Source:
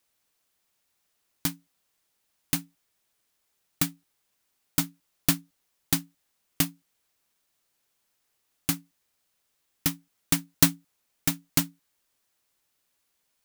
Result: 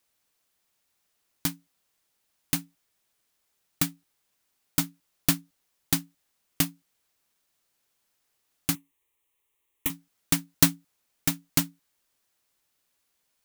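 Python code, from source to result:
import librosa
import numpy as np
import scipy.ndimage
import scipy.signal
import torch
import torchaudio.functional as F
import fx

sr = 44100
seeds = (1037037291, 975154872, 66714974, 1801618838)

y = fx.fixed_phaser(x, sr, hz=990.0, stages=8, at=(8.75, 9.9))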